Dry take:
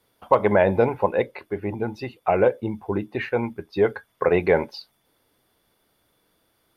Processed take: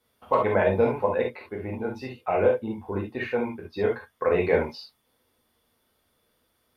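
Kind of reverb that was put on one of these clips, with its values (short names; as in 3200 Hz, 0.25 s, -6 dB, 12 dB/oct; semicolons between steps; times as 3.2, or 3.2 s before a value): non-linear reverb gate 90 ms flat, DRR -2 dB; gain -7 dB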